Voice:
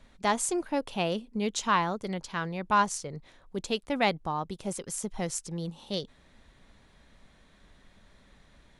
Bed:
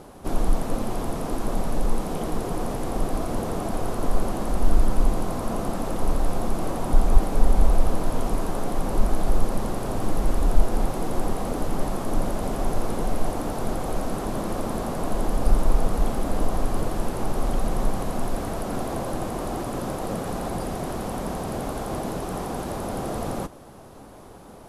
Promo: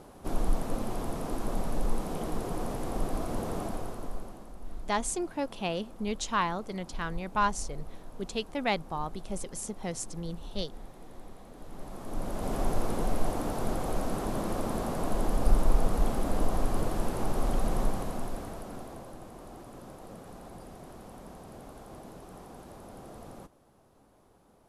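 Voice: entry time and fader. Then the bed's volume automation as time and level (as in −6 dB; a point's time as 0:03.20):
4.65 s, −3.0 dB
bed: 0:03.62 −6 dB
0:04.55 −22.5 dB
0:11.52 −22.5 dB
0:12.55 −4 dB
0:17.79 −4 dB
0:19.17 −17.5 dB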